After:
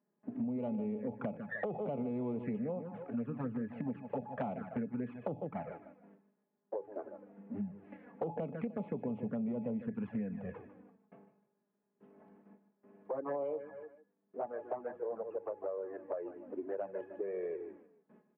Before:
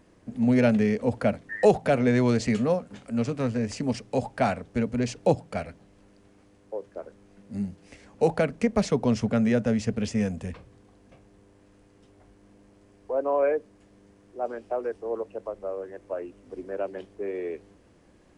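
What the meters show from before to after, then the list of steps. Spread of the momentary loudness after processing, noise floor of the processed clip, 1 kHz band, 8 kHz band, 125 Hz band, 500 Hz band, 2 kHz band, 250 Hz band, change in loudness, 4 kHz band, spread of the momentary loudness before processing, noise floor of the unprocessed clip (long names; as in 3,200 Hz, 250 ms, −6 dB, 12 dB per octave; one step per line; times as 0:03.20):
11 LU, −82 dBFS, −12.5 dB, below −35 dB, −15.0 dB, −12.5 dB, −15.0 dB, −12.0 dB, −13.0 dB, below −30 dB, 15 LU, −58 dBFS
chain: stylus tracing distortion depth 0.23 ms
Gaussian smoothing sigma 4.8 samples
tuned comb filter 840 Hz, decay 0.38 s, mix 80%
noise gate with hold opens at −60 dBFS
repeating echo 151 ms, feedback 28%, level −12.5 dB
flanger swept by the level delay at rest 4.9 ms, full sweep at −33 dBFS
high-pass filter 140 Hz 24 dB per octave
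brickwall limiter −32.5 dBFS, peak gain reduction 10.5 dB
downward compressor 6 to 1, threshold −50 dBFS, peak gain reduction 13.5 dB
level +15 dB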